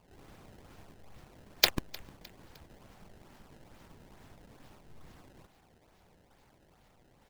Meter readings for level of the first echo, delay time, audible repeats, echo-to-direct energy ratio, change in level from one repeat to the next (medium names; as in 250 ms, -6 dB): -22.0 dB, 306 ms, 2, -21.0 dB, -7.0 dB